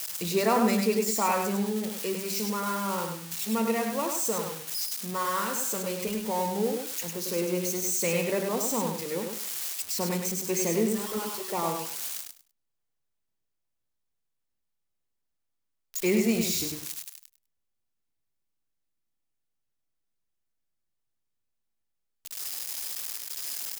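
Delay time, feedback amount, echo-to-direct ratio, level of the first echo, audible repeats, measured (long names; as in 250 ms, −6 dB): 101 ms, 19%, −5.0 dB, −5.0 dB, 3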